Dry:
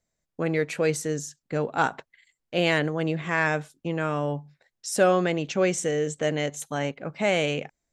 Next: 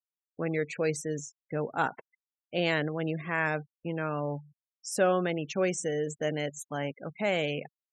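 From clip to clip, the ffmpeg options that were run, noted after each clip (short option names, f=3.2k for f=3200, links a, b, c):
-af "afftfilt=real='re*gte(hypot(re,im),0.0178)':imag='im*gte(hypot(re,im),0.0178)':win_size=1024:overlap=0.75,volume=-5dB"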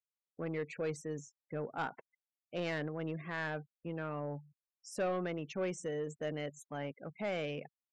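-af "aemphasis=mode=reproduction:type=cd,asoftclip=type=tanh:threshold=-21.5dB,volume=-6.5dB"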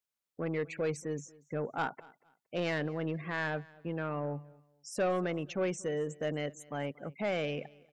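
-af "aecho=1:1:233|466:0.0708|0.0177,volume=4dB"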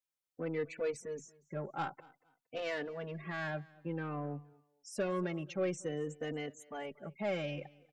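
-filter_complex "[0:a]asplit=2[a][b];[b]adelay=3.3,afreqshift=-0.53[c];[a][c]amix=inputs=2:normalize=1,volume=-1dB"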